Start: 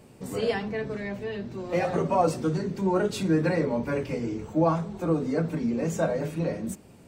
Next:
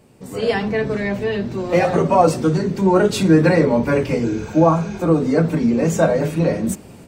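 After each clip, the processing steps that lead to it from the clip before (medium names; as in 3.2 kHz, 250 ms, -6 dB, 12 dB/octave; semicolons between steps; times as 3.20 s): spectral replace 4.27–4.96 s, 1.4–6.8 kHz after; level rider gain up to 12 dB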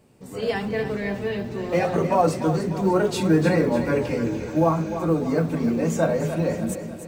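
companded quantiser 8-bit; on a send: two-band feedback delay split 320 Hz, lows 220 ms, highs 298 ms, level -10 dB; on the sum: trim -6 dB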